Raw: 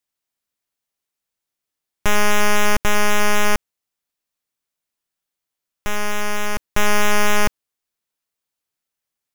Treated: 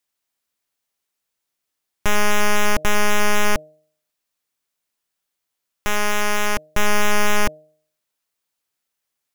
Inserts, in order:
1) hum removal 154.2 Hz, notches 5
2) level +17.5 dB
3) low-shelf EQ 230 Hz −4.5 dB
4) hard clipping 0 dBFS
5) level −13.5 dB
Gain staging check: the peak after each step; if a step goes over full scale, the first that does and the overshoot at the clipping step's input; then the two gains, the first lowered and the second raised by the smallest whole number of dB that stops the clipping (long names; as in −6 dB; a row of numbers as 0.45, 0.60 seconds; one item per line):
−11.0, +6.5, +8.5, 0.0, −13.5 dBFS
step 2, 8.5 dB
step 2 +8.5 dB, step 5 −4.5 dB